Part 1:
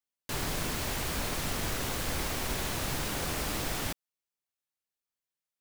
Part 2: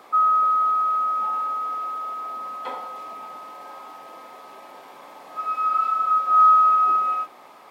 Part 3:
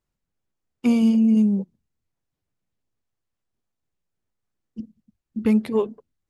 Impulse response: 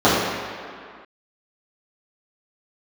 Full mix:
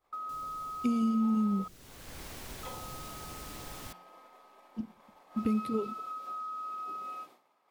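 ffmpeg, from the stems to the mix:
-filter_complex "[0:a]volume=0.282,afade=t=in:st=1.03:d=0.23:silence=0.316228[s0];[1:a]agate=range=0.0224:threshold=0.0178:ratio=3:detection=peak,acompressor=threshold=0.112:ratio=6,volume=0.501,asplit=3[s1][s2][s3];[s1]atrim=end=1.68,asetpts=PTS-STARTPTS,afade=t=out:st=1.676:d=0.004:c=hsin[s4];[s2]atrim=start=1.68:end=2.63,asetpts=PTS-STARTPTS,volume=0[s5];[s3]atrim=start=2.63,asetpts=PTS-STARTPTS,afade=t=in:d=0.004:c=hsin[s6];[s4][s5][s6]concat=n=3:v=0:a=1[s7];[2:a]volume=0.668,asplit=2[s8][s9];[s9]apad=whole_len=247357[s10];[s0][s10]sidechaincompress=threshold=0.00891:ratio=3:attack=16:release=529[s11];[s11][s8]amix=inputs=2:normalize=0,bandreject=f=177.6:t=h:w=4,bandreject=f=355.2:t=h:w=4,bandreject=f=532.8:t=h:w=4,bandreject=f=710.4:t=h:w=4,bandreject=f=888:t=h:w=4,bandreject=f=1065.6:t=h:w=4,bandreject=f=1243.2:t=h:w=4,bandreject=f=1420.8:t=h:w=4,bandreject=f=1598.4:t=h:w=4,bandreject=f=1776:t=h:w=4,bandreject=f=1953.6:t=h:w=4,bandreject=f=2131.2:t=h:w=4,bandreject=f=2308.8:t=h:w=4,bandreject=f=2486.4:t=h:w=4,bandreject=f=2664:t=h:w=4,bandreject=f=2841.6:t=h:w=4,bandreject=f=3019.2:t=h:w=4,bandreject=f=3196.8:t=h:w=4,bandreject=f=3374.4:t=h:w=4,bandreject=f=3552:t=h:w=4,bandreject=f=3729.6:t=h:w=4,bandreject=f=3907.2:t=h:w=4,bandreject=f=4084.8:t=h:w=4,bandreject=f=4262.4:t=h:w=4,bandreject=f=4440:t=h:w=4,bandreject=f=4617.6:t=h:w=4,bandreject=f=4795.2:t=h:w=4,bandreject=f=4972.8:t=h:w=4,bandreject=f=5150.4:t=h:w=4,bandreject=f=5328:t=h:w=4,bandreject=f=5505.6:t=h:w=4,acompressor=threshold=0.0501:ratio=6,volume=1[s12];[s7][s12]amix=inputs=2:normalize=0,acrossover=split=480|3000[s13][s14][s15];[s14]acompressor=threshold=0.00398:ratio=2.5[s16];[s13][s16][s15]amix=inputs=3:normalize=0"

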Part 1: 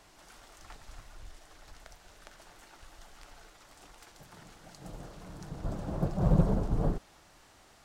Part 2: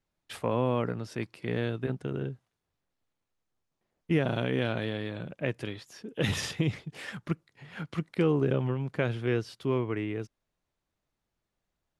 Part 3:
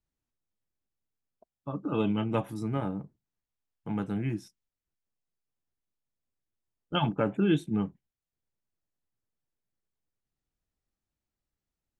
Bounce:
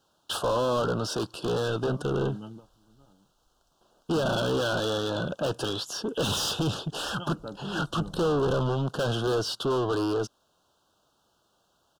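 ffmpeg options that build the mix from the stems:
-filter_complex "[0:a]adelay=1750,volume=0.106[s0];[1:a]equalizer=f=65:t=o:w=1.7:g=5,asplit=2[s1][s2];[s2]highpass=f=720:p=1,volume=44.7,asoftclip=type=tanh:threshold=0.237[s3];[s1][s3]amix=inputs=2:normalize=0,lowpass=f=4800:p=1,volume=0.501,volume=0.531,asplit=2[s4][s5];[2:a]adelay=250,volume=0.266[s6];[s5]apad=whole_len=539864[s7];[s6][s7]sidechaingate=range=0.126:threshold=0.001:ratio=16:detection=peak[s8];[s0][s4][s8]amix=inputs=3:normalize=0,asuperstop=centerf=2100:order=8:qfactor=1.6"

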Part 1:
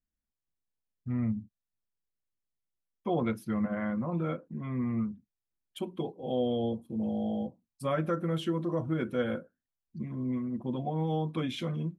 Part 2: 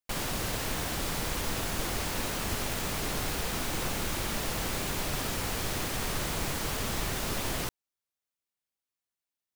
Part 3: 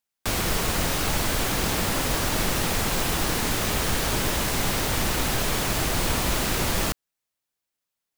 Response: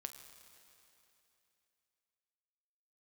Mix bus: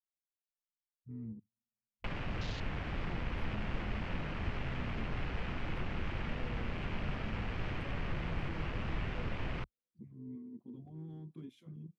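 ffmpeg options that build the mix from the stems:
-filter_complex "[0:a]highshelf=f=6000:g=11.5,volume=16.8,asoftclip=hard,volume=0.0596,volume=0.2,asplit=2[s0][s1];[s1]volume=0.0841[s2];[1:a]lowpass=f=4300:w=0.5412,lowpass=f=4300:w=1.3066,highshelf=f=2600:g=10,adelay=1950,volume=0.891[s3];[3:a]atrim=start_sample=2205[s4];[s2][s4]afir=irnorm=-1:irlink=0[s5];[s0][s3][s5]amix=inputs=3:normalize=0,afwtdn=0.0178,acrossover=split=200[s6][s7];[s7]acompressor=threshold=0.00891:ratio=10[s8];[s6][s8]amix=inputs=2:normalize=0"

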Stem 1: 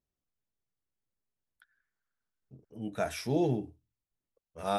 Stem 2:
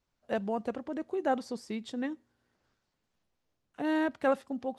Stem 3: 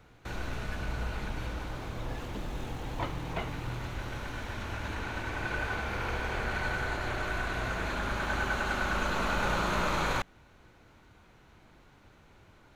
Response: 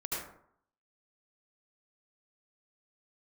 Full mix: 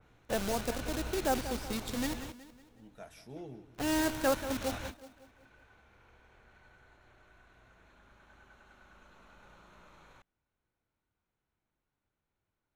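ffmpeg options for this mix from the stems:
-filter_complex "[0:a]volume=0.133,asplit=2[s0][s1];[s1]volume=0.158[s2];[1:a]acrusher=bits=7:dc=4:mix=0:aa=0.000001,volume=0.794,asplit=3[s3][s4][s5];[s4]volume=0.251[s6];[2:a]bandreject=f=4700:w=12,volume=0.501[s7];[s5]apad=whole_len=562511[s8];[s7][s8]sidechaingate=range=0.0708:threshold=0.00112:ratio=16:detection=peak[s9];[s2][s6]amix=inputs=2:normalize=0,aecho=0:1:185|370|555|740|925|1110:1|0.46|0.212|0.0973|0.0448|0.0206[s10];[s0][s3][s9][s10]amix=inputs=4:normalize=0,adynamicequalizer=threshold=0.002:dfrequency=3000:dqfactor=0.7:tfrequency=3000:tqfactor=0.7:attack=5:release=100:ratio=0.375:range=4:mode=boostabove:tftype=highshelf"

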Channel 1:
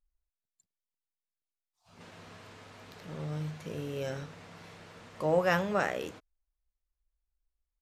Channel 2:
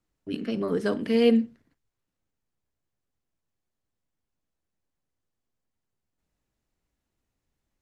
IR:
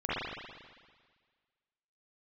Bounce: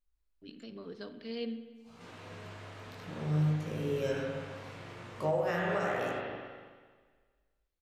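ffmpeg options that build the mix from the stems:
-filter_complex "[0:a]flanger=delay=16.5:depth=6.3:speed=0.51,volume=0.841,asplit=2[s0][s1];[s1]volume=0.631[s2];[1:a]lowpass=f=4200:t=q:w=4.2,adelay=150,volume=0.106,asplit=2[s3][s4];[s4]volume=0.112[s5];[2:a]atrim=start_sample=2205[s6];[s2][s5]amix=inputs=2:normalize=0[s7];[s7][s6]afir=irnorm=-1:irlink=0[s8];[s0][s3][s8]amix=inputs=3:normalize=0,alimiter=limit=0.0841:level=0:latency=1:release=482"

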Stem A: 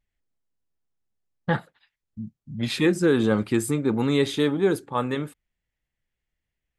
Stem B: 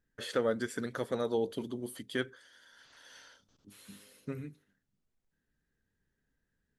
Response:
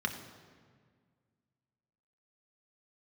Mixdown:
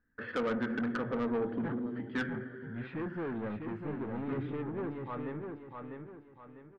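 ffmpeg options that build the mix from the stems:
-filter_complex "[0:a]asoftclip=type=tanh:threshold=0.0668,adelay=150,volume=0.335,asplit=2[s0][s1];[s1]volume=0.531[s2];[1:a]equalizer=f=570:t=o:w=1.7:g=-7,volume=1.41,asplit=3[s3][s4][s5];[s4]volume=0.631[s6];[s5]volume=0.178[s7];[2:a]atrim=start_sample=2205[s8];[s6][s8]afir=irnorm=-1:irlink=0[s9];[s2][s7]amix=inputs=2:normalize=0,aecho=0:1:649|1298|1947|2596|3245:1|0.37|0.137|0.0507|0.0187[s10];[s0][s3][s9][s10]amix=inputs=4:normalize=0,lowpass=f=2000:w=0.5412,lowpass=f=2000:w=1.3066,asoftclip=type=tanh:threshold=0.0422"

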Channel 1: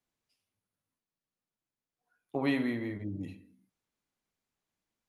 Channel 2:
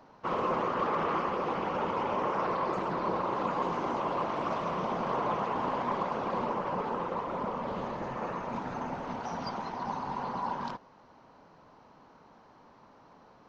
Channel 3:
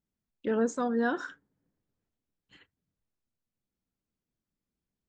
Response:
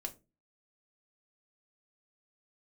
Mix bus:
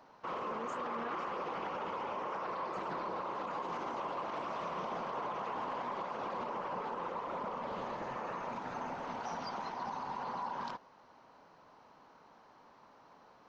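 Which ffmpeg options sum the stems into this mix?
-filter_complex "[1:a]lowshelf=f=360:g=-9,volume=0.891[s0];[2:a]volume=0.266[s1];[s0][s1]amix=inputs=2:normalize=0,alimiter=level_in=2.11:limit=0.0631:level=0:latency=1:release=59,volume=0.473"

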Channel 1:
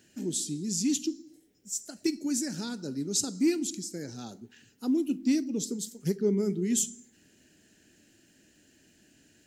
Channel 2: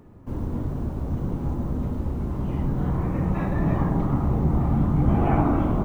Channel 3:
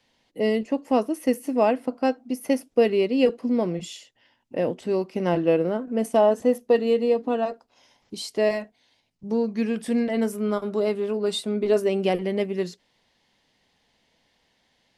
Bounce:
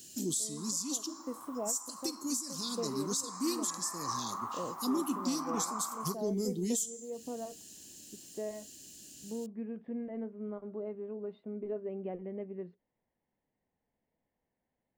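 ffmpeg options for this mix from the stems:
-filter_complex "[0:a]asoftclip=type=tanh:threshold=0.15,aexciter=amount=4.6:drive=3.6:freq=3100,volume=1.26[s0];[1:a]highpass=f=1100:t=q:w=8.5,adelay=300,volume=0.224[s1];[2:a]lowpass=f=1800:w=0.5412,lowpass=f=1800:w=1.3066,volume=0.224[s2];[s0][s2]amix=inputs=2:normalize=0,equalizer=f=1400:t=o:w=1.4:g=-8.5,acompressor=threshold=0.0126:ratio=1.5,volume=1[s3];[s1][s3]amix=inputs=2:normalize=0,alimiter=limit=0.0708:level=0:latency=1:release=468"

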